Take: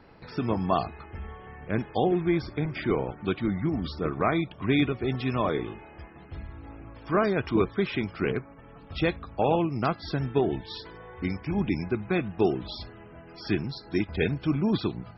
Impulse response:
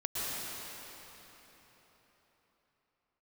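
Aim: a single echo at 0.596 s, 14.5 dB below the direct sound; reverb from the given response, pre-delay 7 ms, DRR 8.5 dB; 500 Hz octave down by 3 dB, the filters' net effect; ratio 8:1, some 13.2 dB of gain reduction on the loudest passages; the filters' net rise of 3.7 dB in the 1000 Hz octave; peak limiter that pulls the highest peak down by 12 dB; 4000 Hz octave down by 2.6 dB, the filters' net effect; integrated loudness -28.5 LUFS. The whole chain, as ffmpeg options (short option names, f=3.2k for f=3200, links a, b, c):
-filter_complex "[0:a]equalizer=f=500:t=o:g=-6,equalizer=f=1k:t=o:g=7,equalizer=f=4k:t=o:g=-3.5,acompressor=threshold=-32dB:ratio=8,alimiter=level_in=6dB:limit=-24dB:level=0:latency=1,volume=-6dB,aecho=1:1:596:0.188,asplit=2[a][b];[1:a]atrim=start_sample=2205,adelay=7[c];[b][c]afir=irnorm=-1:irlink=0,volume=-15dB[d];[a][d]amix=inputs=2:normalize=0,volume=11.5dB"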